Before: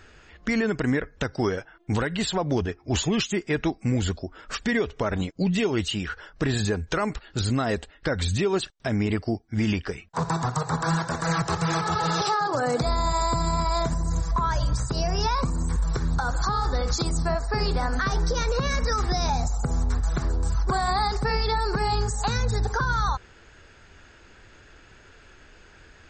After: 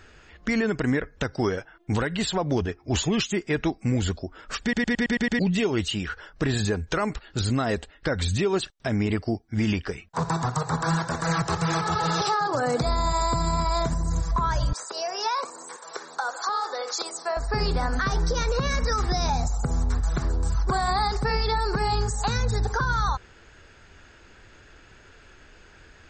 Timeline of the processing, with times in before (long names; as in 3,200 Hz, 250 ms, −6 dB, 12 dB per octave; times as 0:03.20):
0:04.62: stutter in place 0.11 s, 7 plays
0:14.73–0:17.37: high-pass filter 440 Hz 24 dB per octave